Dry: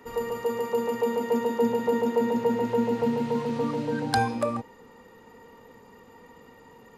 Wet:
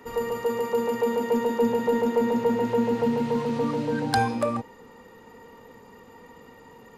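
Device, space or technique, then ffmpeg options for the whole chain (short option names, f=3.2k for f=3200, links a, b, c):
parallel distortion: -filter_complex "[0:a]asplit=2[a][b];[b]asoftclip=type=hard:threshold=-26.5dB,volume=-10dB[c];[a][c]amix=inputs=2:normalize=0"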